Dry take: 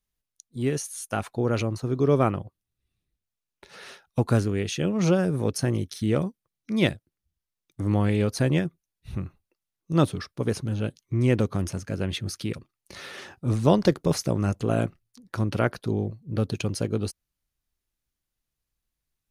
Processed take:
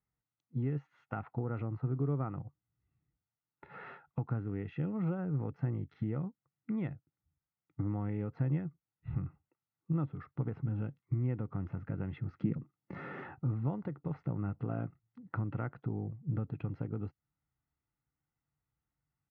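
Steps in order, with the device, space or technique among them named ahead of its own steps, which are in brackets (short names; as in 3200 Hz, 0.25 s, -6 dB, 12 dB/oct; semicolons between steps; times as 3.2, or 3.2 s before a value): bass amplifier (compressor 6:1, threshold -34 dBFS, peak gain reduction 19 dB; speaker cabinet 82–2000 Hz, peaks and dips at 140 Hz +7 dB, 300 Hz +9 dB, 600 Hz -9 dB, 930 Hz +7 dB); high shelf 4800 Hz -4.5 dB; comb 1.5 ms, depth 46%; harmonic-percussive split percussive -4 dB; 12.39–13.23 EQ curve 110 Hz 0 dB, 190 Hz +10 dB, 850 Hz -1 dB, 4000 Hz -3 dB, 7500 Hz +11 dB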